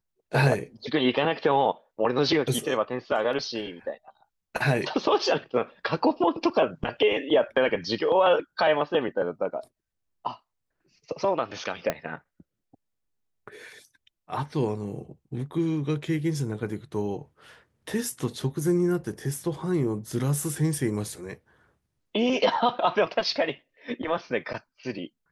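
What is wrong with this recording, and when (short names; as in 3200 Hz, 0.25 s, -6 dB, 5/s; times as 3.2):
11.9 pop -11 dBFS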